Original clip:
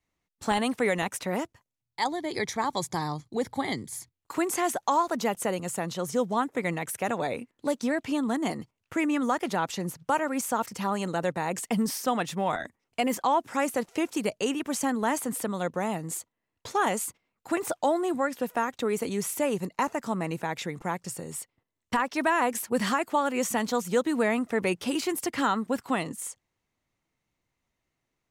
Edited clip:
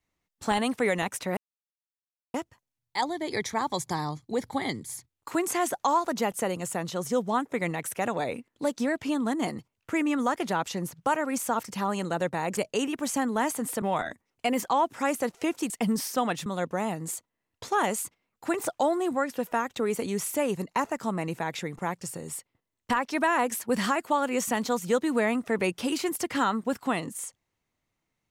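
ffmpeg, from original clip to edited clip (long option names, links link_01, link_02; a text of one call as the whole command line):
ffmpeg -i in.wav -filter_complex "[0:a]asplit=6[link_01][link_02][link_03][link_04][link_05][link_06];[link_01]atrim=end=1.37,asetpts=PTS-STARTPTS,afade=type=out:start_time=1.366:duration=0.004:curve=hsin,apad=pad_dur=0.97[link_07];[link_02]atrim=start=1.37:end=11.602,asetpts=PTS-STARTPTS,afade=type=in:duration=0.004:curve=hsin[link_08];[link_03]atrim=start=14.238:end=15.492[link_09];[link_04]atrim=start=12.358:end=14.242[link_10];[link_05]atrim=start=11.598:end=12.362[link_11];[link_06]atrim=start=15.488[link_12];[link_07][link_08]concat=n=2:v=0:a=1[link_13];[link_13][link_09]acrossfade=duration=0.004:curve1=hsin:curve2=hsin[link_14];[link_14][link_10]acrossfade=duration=0.004:curve1=hsin:curve2=hsin[link_15];[link_15][link_11]acrossfade=duration=0.004:curve1=hsin:curve2=hsin[link_16];[link_16][link_12]acrossfade=duration=0.004:curve1=hsin:curve2=hsin" out.wav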